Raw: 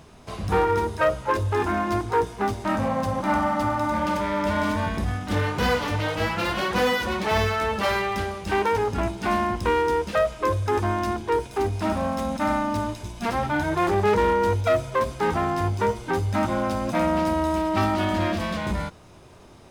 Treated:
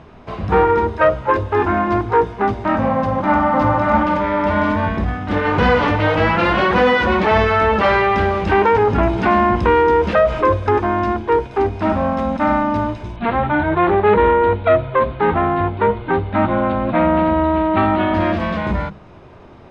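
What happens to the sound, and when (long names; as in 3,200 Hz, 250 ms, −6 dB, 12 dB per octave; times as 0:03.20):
0:02.95–0:03.45: delay throw 580 ms, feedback 15%, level −2.5 dB
0:05.45–0:10.69: envelope flattener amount 50%
0:13.16–0:18.14: Butterworth low-pass 4,200 Hz 72 dB per octave
whole clip: low-pass filter 2,400 Hz 12 dB per octave; mains-hum notches 50/100/150/200 Hz; level +7.5 dB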